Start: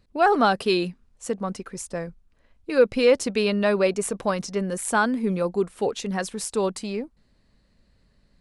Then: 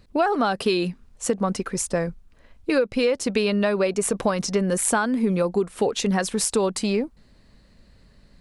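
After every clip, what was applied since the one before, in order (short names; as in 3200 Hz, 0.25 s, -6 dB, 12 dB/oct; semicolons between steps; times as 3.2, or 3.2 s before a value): compressor 16:1, threshold -26 dBFS, peak gain reduction 15.5 dB; gain +8.5 dB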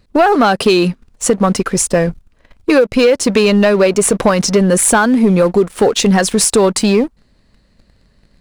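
sample leveller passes 2; gain +4.5 dB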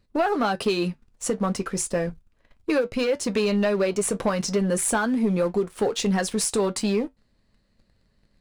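flange 0.39 Hz, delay 9 ms, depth 1 ms, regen -62%; gain -8 dB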